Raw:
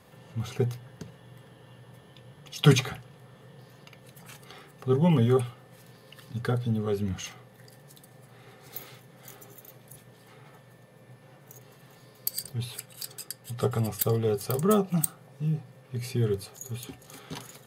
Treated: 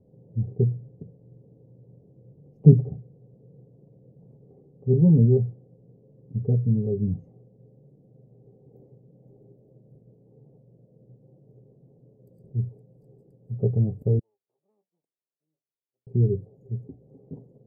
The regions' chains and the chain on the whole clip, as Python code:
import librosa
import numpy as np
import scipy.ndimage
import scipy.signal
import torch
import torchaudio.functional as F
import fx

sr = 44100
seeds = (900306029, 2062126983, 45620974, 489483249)

y = fx.chain(x, sr, fx.lower_of_two(delay_ms=0.81),
    fx.ladder_bandpass(hz=3500.0, resonance_pct=25), at=(14.19, 16.07))
y = scipy.signal.sosfilt(scipy.signal.cheby2(4, 50, 1300.0, 'lowpass', fs=sr, output='sos'), y)
y = fx.dynamic_eq(y, sr, hz=130.0, q=0.78, threshold_db=-40.0, ratio=4.0, max_db=7)